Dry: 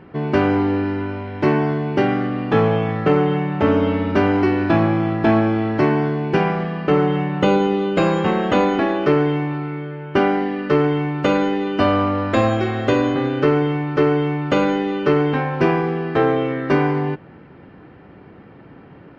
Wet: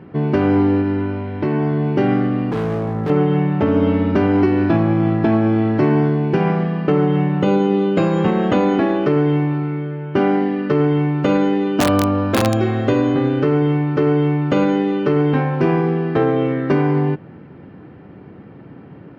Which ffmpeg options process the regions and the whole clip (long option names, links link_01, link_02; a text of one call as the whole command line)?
ffmpeg -i in.wav -filter_complex "[0:a]asettb=1/sr,asplit=3[link_01][link_02][link_03];[link_01]atrim=end=0.814[link_04];[link_02]atrim=start=0.81:end=1.84,asetpts=PTS-STARTPTS,afade=type=in:duration=0.004:curve=qsin,afade=type=out:start_time=1.026:duration=0.004:curve=qsin,lowpass=frequency=5300:width=0.5412,lowpass=frequency=5300:width=1.3066,acompressor=threshold=-18dB:ratio=6:attack=3.2:release=140:knee=1:detection=peak[link_05];[link_03]atrim=start=1.836[link_06];[link_04][link_05]acrossfade=duration=0.004:curve1=hsin:curve2=qsin[link_07];[link_07][link_06]acrossfade=duration=0.004:curve1=qsin:curve2=hsin,asettb=1/sr,asplit=3[link_08][link_09][link_10];[link_08]atrim=end=2.514[link_11];[link_09]atrim=start=2.51:end=3.1,asetpts=PTS-STARTPTS,afade=type=in:duration=0.004:curve=qsin,afade=type=out:start_time=0.586:duration=0.004:curve=qsin,lowpass=1200,asoftclip=type=hard:threshold=-22dB[link_12];[link_10]atrim=start=3.096[link_13];[link_11][link_12]acrossfade=duration=0.004:curve1=hsin:curve2=qsin[link_14];[link_14][link_13]acrossfade=duration=0.004:curve1=qsin:curve2=hsin,asettb=1/sr,asplit=3[link_15][link_16][link_17];[link_15]atrim=end=11.764[link_18];[link_16]atrim=start=11.76:end=12.62,asetpts=PTS-STARTPTS,afade=type=in:duration=0.004:curve=qsin,afade=type=out:start_time=0.856:duration=0.004:curve=qsin,bandreject=frequency=2000:width=7.7,aeval=exprs='(mod(2.37*val(0)+1,2)-1)/2.37':channel_layout=same[link_19];[link_17]atrim=start=12.616[link_20];[link_18][link_19]acrossfade=duration=0.004:curve1=hsin:curve2=qsin[link_21];[link_21][link_20]acrossfade=duration=0.004:curve1=qsin:curve2=hsin,highpass=92,lowshelf=frequency=420:gain=9,alimiter=limit=-4.5dB:level=0:latency=1:release=129,volume=-2dB" out.wav